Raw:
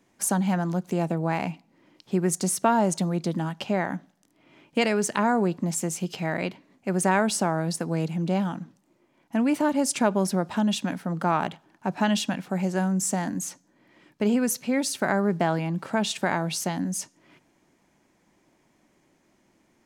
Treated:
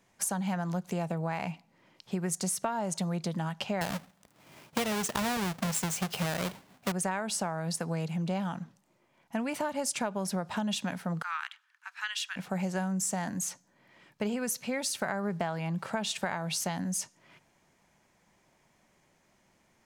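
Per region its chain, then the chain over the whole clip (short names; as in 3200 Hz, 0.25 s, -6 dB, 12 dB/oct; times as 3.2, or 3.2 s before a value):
3.81–6.92 half-waves squared off + HPF 44 Hz
11.22–12.36 steep high-pass 1300 Hz + high shelf 3700 Hz -7 dB
whole clip: bell 300 Hz -11 dB 0.81 oct; compressor 10:1, threshold -28 dBFS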